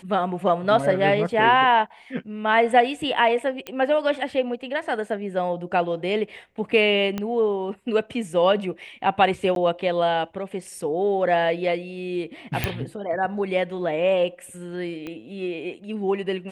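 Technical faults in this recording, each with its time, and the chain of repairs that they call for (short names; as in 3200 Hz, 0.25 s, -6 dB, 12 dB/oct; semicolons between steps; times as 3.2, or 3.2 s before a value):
3.67 pop -16 dBFS
7.18 pop -14 dBFS
9.55–9.56 gap 12 ms
12.64 pop -7 dBFS
15.07 pop -21 dBFS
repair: de-click; interpolate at 9.55, 12 ms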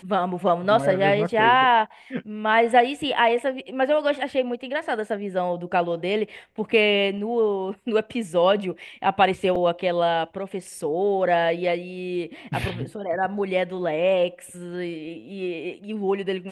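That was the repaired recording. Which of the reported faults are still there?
7.18 pop
15.07 pop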